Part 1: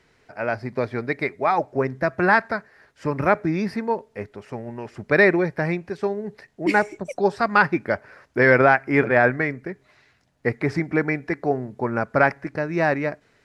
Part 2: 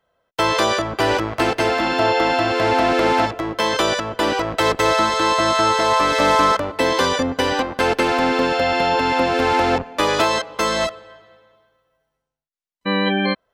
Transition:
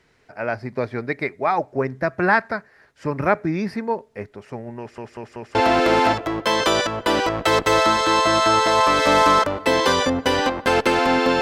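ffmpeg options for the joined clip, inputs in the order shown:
-filter_complex "[0:a]apad=whole_dur=11.41,atrim=end=11.41,asplit=4[s0][s1][s2][s3];[s0]atrim=end=4.982[s4];[s1]atrim=start=4.788:end=4.982[s5];[s2]atrim=start=4.788:end=4.982[s6];[s3]atrim=start=4.788:end=4.982[s7];[1:a]atrim=start=2.678:end=8.54[s8];[s4][s5]acrossfade=d=0.004:c1=hsin:c2=hsin[s9];[s9][s6]acrossfade=d=0.004:c1=hsin:c2=hsin[s10];[s10][s7]acrossfade=d=0.004:c1=hsin:c2=hsin[s11];[s11][s8]acrossfade=d=0.004:c1=hsin:c2=hsin"

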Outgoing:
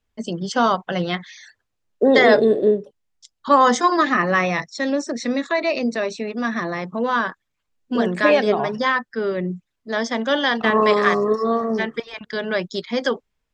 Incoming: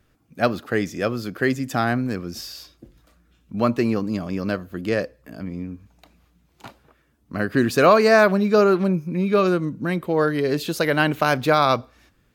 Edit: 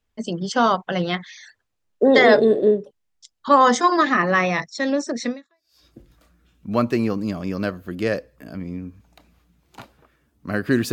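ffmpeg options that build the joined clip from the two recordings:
-filter_complex "[0:a]apad=whole_dur=10.92,atrim=end=10.92,atrim=end=5.86,asetpts=PTS-STARTPTS[s0];[1:a]atrim=start=2.14:end=7.78,asetpts=PTS-STARTPTS[s1];[s0][s1]acrossfade=d=0.58:c1=exp:c2=exp"

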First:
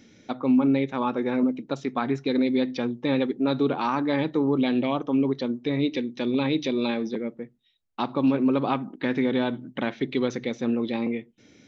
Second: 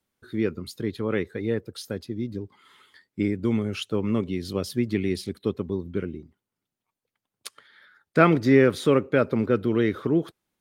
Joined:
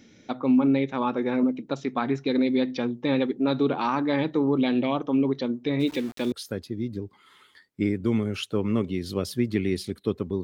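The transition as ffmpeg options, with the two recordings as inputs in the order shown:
-filter_complex "[0:a]asplit=3[s0][s1][s2];[s0]afade=t=out:st=5.79:d=0.02[s3];[s1]aeval=exprs='val(0)*gte(abs(val(0)),0.0119)':c=same,afade=t=in:st=5.79:d=0.02,afade=t=out:st=6.32:d=0.02[s4];[s2]afade=t=in:st=6.32:d=0.02[s5];[s3][s4][s5]amix=inputs=3:normalize=0,apad=whole_dur=10.43,atrim=end=10.43,atrim=end=6.322[s6];[1:a]atrim=start=1.708:end=5.82[s7];[s6][s7]acrossfade=d=0.004:c1=hsin:c2=hsin"

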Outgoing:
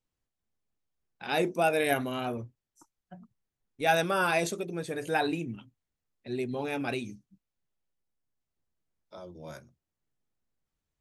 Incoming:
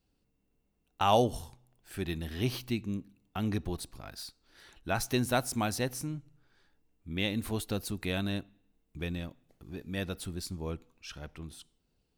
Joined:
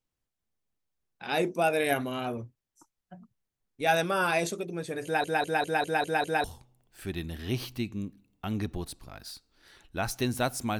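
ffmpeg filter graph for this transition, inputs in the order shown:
-filter_complex "[0:a]apad=whole_dur=10.79,atrim=end=10.79,asplit=7[s0][s1][s2][s3][s4][s5][s6];[s0]atrim=end=5.242[s7];[s1]atrim=start=5.038:end=5.242[s8];[s2]atrim=start=5.038:end=5.242[s9];[s3]atrim=start=5.038:end=5.242[s10];[s4]atrim=start=5.038:end=5.242[s11];[s5]atrim=start=5.038:end=5.242[s12];[s6]atrim=start=5.038:end=5.242[s13];[1:a]atrim=start=1.358:end=5.71[s14];[s7][s8]acrossfade=d=0.004:c1=hsin:c2=hsin[s15];[s15][s9]acrossfade=d=0.004:c1=hsin:c2=hsin[s16];[s16][s10]acrossfade=d=0.004:c1=hsin:c2=hsin[s17];[s17][s11]acrossfade=d=0.004:c1=hsin:c2=hsin[s18];[s18][s12]acrossfade=d=0.004:c1=hsin:c2=hsin[s19];[s19][s13]acrossfade=d=0.004:c1=hsin:c2=hsin[s20];[s20][s14]acrossfade=d=0.004:c1=hsin:c2=hsin"

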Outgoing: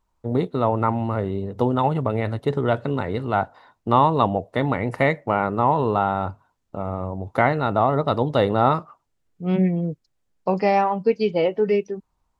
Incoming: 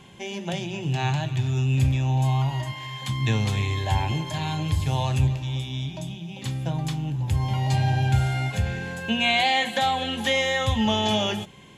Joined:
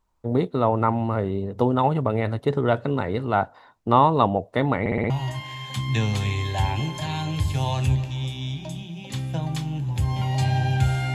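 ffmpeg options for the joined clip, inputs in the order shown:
-filter_complex "[0:a]apad=whole_dur=11.14,atrim=end=11.14,asplit=5[s0][s1][s2][s3][s4];[s0]atrim=end=4.862[s5];[s1]atrim=start=4.798:end=4.862[s6];[s2]atrim=start=4.798:end=4.862[s7];[s3]atrim=start=4.798:end=4.862[s8];[s4]atrim=start=4.798:end=4.862[s9];[1:a]atrim=start=2.418:end=8.46[s10];[s5][s6]acrossfade=d=0.004:c1=hsin:c2=hsin[s11];[s11][s7]acrossfade=d=0.004:c1=hsin:c2=hsin[s12];[s12][s8]acrossfade=d=0.004:c1=hsin:c2=hsin[s13];[s13][s9]acrossfade=d=0.004:c1=hsin:c2=hsin[s14];[s14][s10]acrossfade=d=0.004:c1=hsin:c2=hsin"

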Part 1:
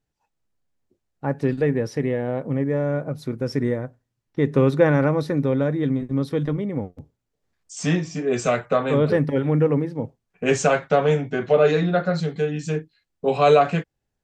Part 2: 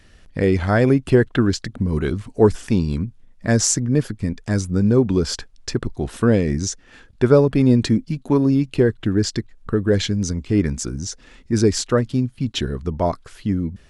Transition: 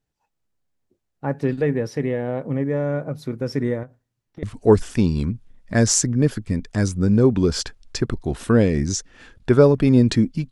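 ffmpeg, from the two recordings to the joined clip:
-filter_complex "[0:a]asettb=1/sr,asplit=3[s0][s1][s2];[s0]atrim=end=3.834[s3];[s1]atrim=start=3.83:end=4.43,asetpts=PTS-STARTPTS,afade=t=in:d=0.004:c=qsin,afade=t=out:st=0.596:d=0.004:c=qsin,acompressor=threshold=0.0178:ratio=6:attack=3.2:release=140:knee=1:detection=peak[s4];[s2]atrim=start=4.426[s5];[s3][s4]acrossfade=d=0.004:c1=hsin:c2=qsin[s6];[s6][s5]acrossfade=d=0.004:c1=qsin:c2=hsin,apad=whole_dur=10.51,atrim=end=10.51,atrim=end=4.432[s7];[1:a]atrim=start=2.158:end=8.24[s8];[s7][s8]acrossfade=d=0.004:c1=hsin:c2=hsin"

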